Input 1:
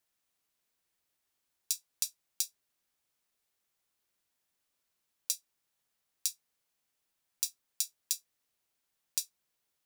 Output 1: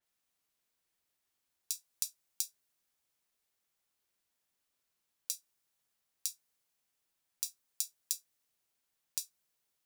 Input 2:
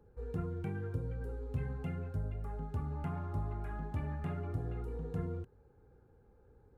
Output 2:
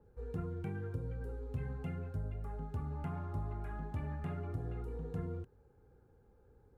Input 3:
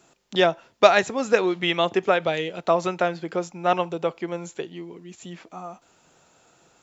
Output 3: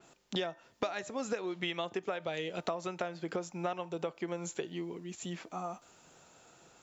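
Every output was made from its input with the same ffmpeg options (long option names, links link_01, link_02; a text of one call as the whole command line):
ffmpeg -i in.wav -af "acompressor=threshold=-30dB:ratio=16,bandreject=frequency=302.4:width_type=h:width=4,bandreject=frequency=604.8:width_type=h:width=4,bandreject=frequency=907.2:width_type=h:width=4,bandreject=frequency=1209.6:width_type=h:width=4,bandreject=frequency=1512:width_type=h:width=4,bandreject=frequency=1814.4:width_type=h:width=4,adynamicequalizer=threshold=0.00282:dfrequency=5000:dqfactor=0.7:tfrequency=5000:tqfactor=0.7:attack=5:release=100:ratio=0.375:range=2:mode=boostabove:tftype=highshelf,volume=-1.5dB" out.wav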